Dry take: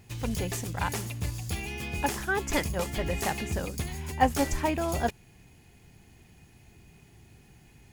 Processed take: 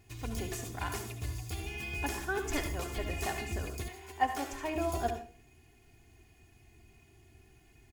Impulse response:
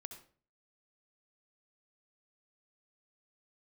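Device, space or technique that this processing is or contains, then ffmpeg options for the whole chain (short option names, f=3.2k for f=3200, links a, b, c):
microphone above a desk: -filter_complex "[0:a]aecho=1:1:2.8:0.59[a];[1:a]atrim=start_sample=2205[b];[a][b]afir=irnorm=-1:irlink=0,asettb=1/sr,asplit=3[c][d][e];[c]atrim=end=3.884[f];[d]atrim=start=3.88:end=4.76,asetpts=PTS-STARTPTS,afade=t=in:d=0.004:c=qsin,afade=t=out:st=0.876:d=0.004:c=qsin,bass=f=250:g=-15,treble=f=4k:g=-5[g];[e]atrim=start=4.756[h];[f][g]acrossfade=d=0.004:c1=hsin:c2=qsin[i];[i][h]acrossfade=d=0.004:c1=qsin:c2=hsin,volume=-2dB"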